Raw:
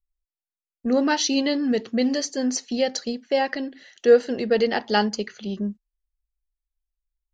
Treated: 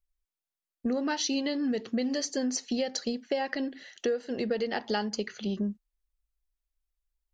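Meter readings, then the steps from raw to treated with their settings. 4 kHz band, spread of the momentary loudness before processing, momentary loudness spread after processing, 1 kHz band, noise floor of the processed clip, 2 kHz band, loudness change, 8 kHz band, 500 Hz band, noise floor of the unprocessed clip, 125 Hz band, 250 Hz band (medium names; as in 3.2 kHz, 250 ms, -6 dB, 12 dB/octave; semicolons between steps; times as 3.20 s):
-6.5 dB, 12 LU, 6 LU, -9.5 dB, under -85 dBFS, -8.0 dB, -8.0 dB, -5.5 dB, -10.0 dB, under -85 dBFS, no reading, -6.5 dB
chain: compression 12:1, threshold -26 dBFS, peak gain reduction 17 dB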